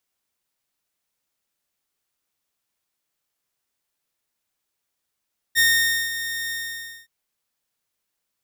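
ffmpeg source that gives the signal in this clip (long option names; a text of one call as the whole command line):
ffmpeg -f lavfi -i "aevalsrc='0.266*(2*mod(1840*t,1)-1)':duration=1.521:sample_rate=44100,afade=type=in:duration=0.038,afade=type=out:start_time=0.038:duration=0.51:silence=0.251,afade=type=out:start_time=0.96:duration=0.561" out.wav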